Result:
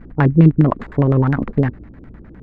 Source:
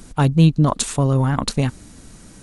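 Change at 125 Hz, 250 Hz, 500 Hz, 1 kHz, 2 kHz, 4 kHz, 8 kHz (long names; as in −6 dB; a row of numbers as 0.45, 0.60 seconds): +2.0 dB, +3.5 dB, +3.5 dB, −0.5 dB, +3.5 dB, below −15 dB, below −35 dB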